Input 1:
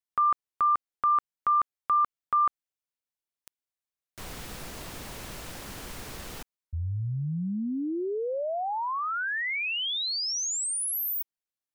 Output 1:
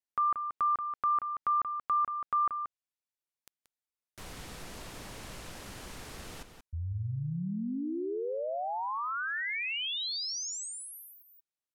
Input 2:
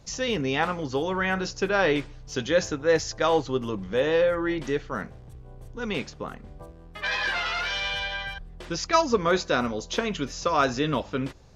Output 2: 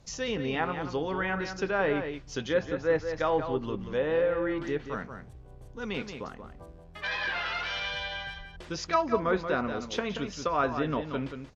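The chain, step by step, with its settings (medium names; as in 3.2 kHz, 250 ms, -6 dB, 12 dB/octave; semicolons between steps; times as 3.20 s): echo from a far wall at 31 m, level -8 dB; low-pass that closes with the level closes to 2.2 kHz, closed at -20 dBFS; trim -4.5 dB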